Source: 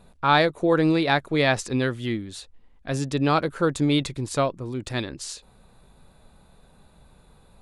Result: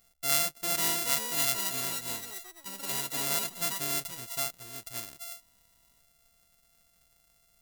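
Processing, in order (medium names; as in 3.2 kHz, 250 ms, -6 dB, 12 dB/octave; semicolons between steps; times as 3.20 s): sorted samples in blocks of 64 samples; pre-emphasis filter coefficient 0.9; ever faster or slower copies 613 ms, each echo +6 st, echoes 3; trim -1 dB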